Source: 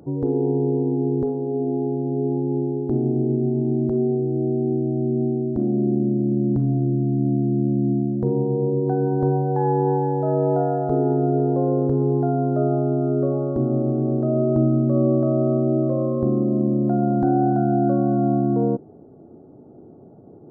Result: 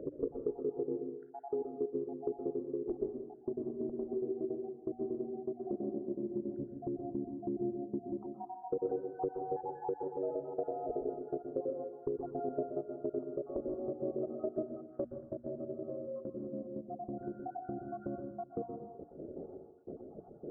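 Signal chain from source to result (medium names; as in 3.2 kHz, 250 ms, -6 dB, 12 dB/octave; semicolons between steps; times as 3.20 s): random holes in the spectrogram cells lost 68%; graphic EQ 125/250/500/1000 Hz -11/-3/+10/-11 dB; compression 4:1, threshold -39 dBFS, peak gain reduction 19.5 dB; hum notches 60/120/180/240/300 Hz; reverberation RT60 0.80 s, pre-delay 115 ms, DRR 4 dB; gain riding within 4 dB 2 s; low-pass 1.4 kHz 24 dB/octave; peaking EQ 110 Hz -6.5 dB 2 oct, from 15.04 s 420 Hz; trim +3 dB; Vorbis 64 kbps 44.1 kHz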